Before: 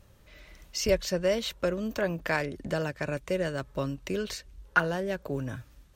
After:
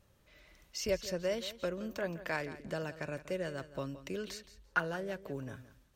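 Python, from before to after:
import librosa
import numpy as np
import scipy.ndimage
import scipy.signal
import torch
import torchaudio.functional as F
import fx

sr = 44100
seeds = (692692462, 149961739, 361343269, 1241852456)

p1 = fx.low_shelf(x, sr, hz=85.0, db=-6.5)
p2 = p1 + fx.echo_feedback(p1, sr, ms=170, feedback_pct=15, wet_db=-14.5, dry=0)
y = F.gain(torch.from_numpy(p2), -7.5).numpy()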